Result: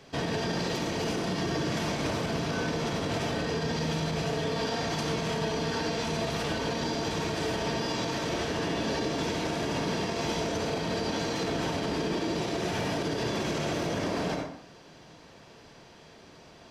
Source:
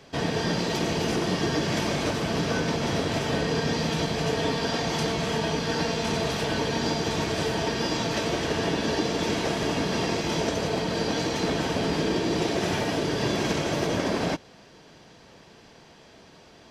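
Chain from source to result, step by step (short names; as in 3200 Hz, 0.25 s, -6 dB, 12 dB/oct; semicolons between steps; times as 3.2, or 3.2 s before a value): on a send at -4 dB: reverb RT60 0.60 s, pre-delay 47 ms; on the sum: limiter -19.5 dBFS, peak gain reduction 8 dB; gain -2 dB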